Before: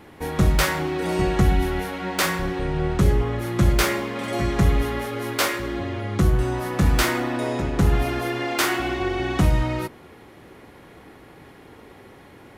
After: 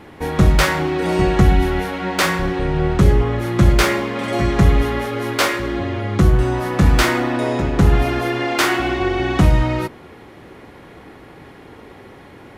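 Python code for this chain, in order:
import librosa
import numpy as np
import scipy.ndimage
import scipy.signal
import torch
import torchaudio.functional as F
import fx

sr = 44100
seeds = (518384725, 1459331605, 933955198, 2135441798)

y = fx.high_shelf(x, sr, hz=8100.0, db=-8.5)
y = y * 10.0 ** (5.5 / 20.0)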